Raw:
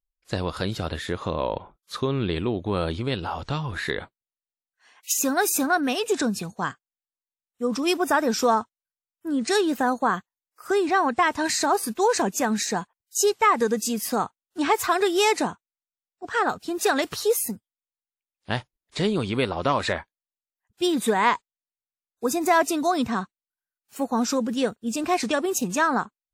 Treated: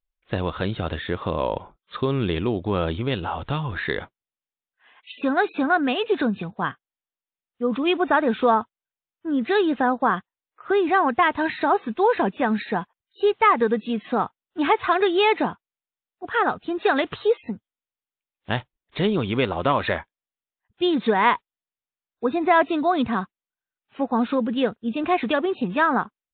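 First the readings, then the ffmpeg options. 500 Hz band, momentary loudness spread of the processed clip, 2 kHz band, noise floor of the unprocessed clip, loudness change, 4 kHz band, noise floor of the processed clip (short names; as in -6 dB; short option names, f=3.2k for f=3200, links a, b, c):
+2.0 dB, 10 LU, +2.0 dB, under -85 dBFS, +1.5 dB, -1.5 dB, under -85 dBFS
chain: -af "aresample=8000,aresample=44100,volume=2dB"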